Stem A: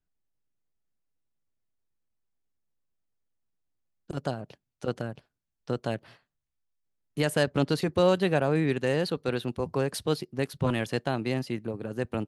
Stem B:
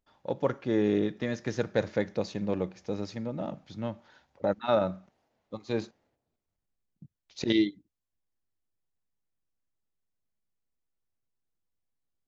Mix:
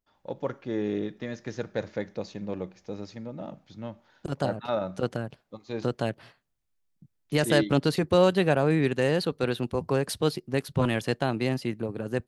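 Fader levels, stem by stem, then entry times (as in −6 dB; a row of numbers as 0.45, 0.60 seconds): +2.0, −3.5 decibels; 0.15, 0.00 seconds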